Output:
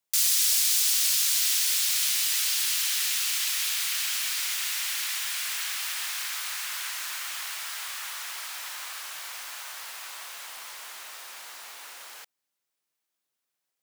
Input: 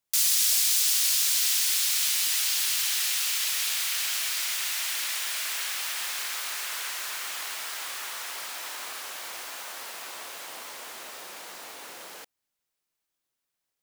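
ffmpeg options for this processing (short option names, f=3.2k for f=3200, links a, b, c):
-filter_complex "[0:a]highpass=59,lowshelf=f=150:g=-7.5,acrossover=split=800|2900[a][b][c];[a]alimiter=level_in=35.5dB:limit=-24dB:level=0:latency=1,volume=-35.5dB[d];[d][b][c]amix=inputs=3:normalize=0"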